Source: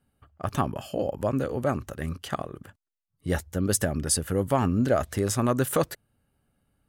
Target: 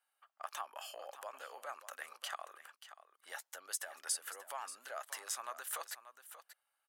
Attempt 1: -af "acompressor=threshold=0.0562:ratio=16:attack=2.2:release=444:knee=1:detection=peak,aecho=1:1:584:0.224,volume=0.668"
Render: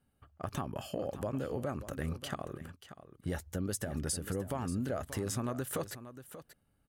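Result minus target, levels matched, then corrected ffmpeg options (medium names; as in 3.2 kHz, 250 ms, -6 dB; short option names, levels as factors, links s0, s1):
1 kHz band -4.5 dB
-af "acompressor=threshold=0.0562:ratio=16:attack=2.2:release=444:knee=1:detection=peak,highpass=f=800:w=0.5412,highpass=f=800:w=1.3066,aecho=1:1:584:0.224,volume=0.668"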